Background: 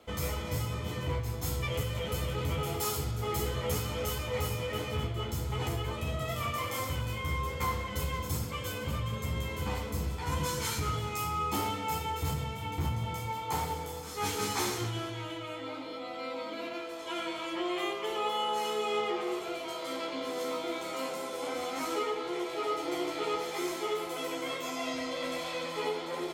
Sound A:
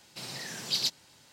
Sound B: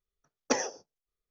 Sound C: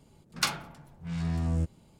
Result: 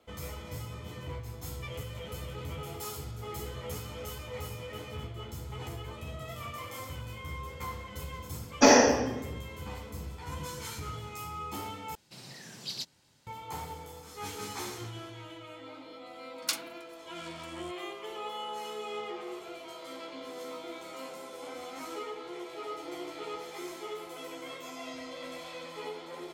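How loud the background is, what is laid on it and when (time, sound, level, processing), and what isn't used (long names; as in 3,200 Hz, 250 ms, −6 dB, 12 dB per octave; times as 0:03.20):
background −7 dB
0:08.11: mix in B −3.5 dB + rectangular room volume 510 cubic metres, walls mixed, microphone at 8.4 metres
0:11.95: overwrite with A −9 dB + low-shelf EQ 300 Hz +7 dB
0:16.06: mix in C −11.5 dB + spectral tilt +4 dB per octave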